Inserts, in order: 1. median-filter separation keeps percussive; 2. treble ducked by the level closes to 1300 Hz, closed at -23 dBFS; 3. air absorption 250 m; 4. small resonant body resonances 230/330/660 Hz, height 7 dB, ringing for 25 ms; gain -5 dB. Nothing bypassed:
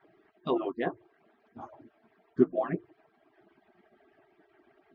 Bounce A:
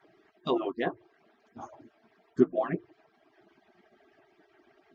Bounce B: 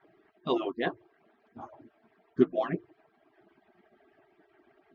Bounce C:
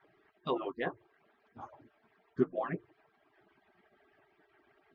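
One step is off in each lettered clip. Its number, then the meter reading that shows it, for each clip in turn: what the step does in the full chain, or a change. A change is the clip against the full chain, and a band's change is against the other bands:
3, 2 kHz band +1.5 dB; 2, 2 kHz band +3.5 dB; 4, 250 Hz band -4.0 dB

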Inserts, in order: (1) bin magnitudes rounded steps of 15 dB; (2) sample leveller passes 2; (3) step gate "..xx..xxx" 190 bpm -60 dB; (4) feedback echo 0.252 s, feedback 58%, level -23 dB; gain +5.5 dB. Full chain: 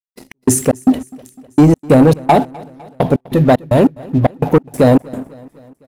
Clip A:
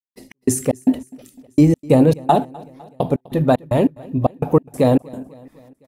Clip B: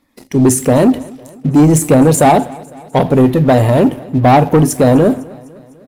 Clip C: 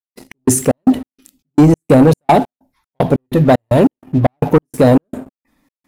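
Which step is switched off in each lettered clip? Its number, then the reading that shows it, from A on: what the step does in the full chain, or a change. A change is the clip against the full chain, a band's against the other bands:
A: 2, crest factor change +4.5 dB; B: 3, crest factor change -2.5 dB; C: 4, echo-to-direct -21.5 dB to none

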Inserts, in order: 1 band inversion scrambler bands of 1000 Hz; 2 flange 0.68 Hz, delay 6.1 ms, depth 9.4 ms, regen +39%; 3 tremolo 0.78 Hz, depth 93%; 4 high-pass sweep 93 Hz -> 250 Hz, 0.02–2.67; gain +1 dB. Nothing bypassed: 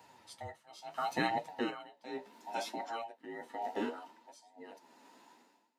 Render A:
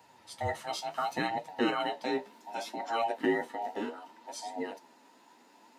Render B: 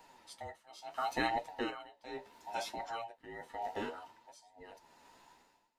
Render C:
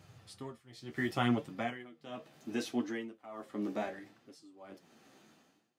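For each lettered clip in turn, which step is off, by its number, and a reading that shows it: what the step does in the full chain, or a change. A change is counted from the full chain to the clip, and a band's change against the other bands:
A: 3, momentary loudness spread change -8 LU; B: 4, 125 Hz band -3.5 dB; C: 1, 125 Hz band +10.0 dB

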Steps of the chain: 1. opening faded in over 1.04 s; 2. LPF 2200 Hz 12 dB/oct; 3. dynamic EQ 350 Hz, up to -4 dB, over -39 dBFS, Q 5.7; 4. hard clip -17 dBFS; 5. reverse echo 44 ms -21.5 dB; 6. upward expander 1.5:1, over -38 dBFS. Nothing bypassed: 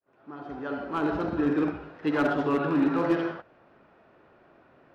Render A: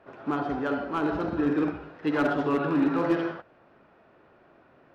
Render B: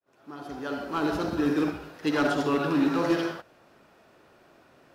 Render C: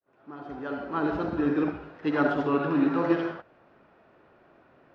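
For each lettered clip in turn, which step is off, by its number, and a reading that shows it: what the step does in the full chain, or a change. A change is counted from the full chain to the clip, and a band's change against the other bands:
1, momentary loudness spread change -8 LU; 2, 4 kHz band +7.5 dB; 4, distortion -20 dB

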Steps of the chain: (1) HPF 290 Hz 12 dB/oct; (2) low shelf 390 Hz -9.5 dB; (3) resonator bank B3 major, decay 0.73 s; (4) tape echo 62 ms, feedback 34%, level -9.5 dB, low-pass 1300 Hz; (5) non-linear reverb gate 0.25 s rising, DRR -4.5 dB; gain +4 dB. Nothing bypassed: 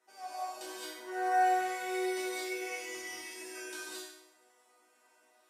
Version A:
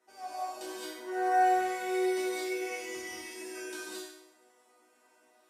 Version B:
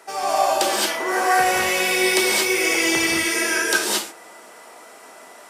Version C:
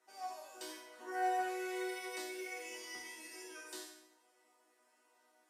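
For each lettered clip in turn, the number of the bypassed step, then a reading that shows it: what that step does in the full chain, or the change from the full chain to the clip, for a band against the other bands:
2, 250 Hz band +4.5 dB; 3, 1 kHz band -8.5 dB; 5, momentary loudness spread change -1 LU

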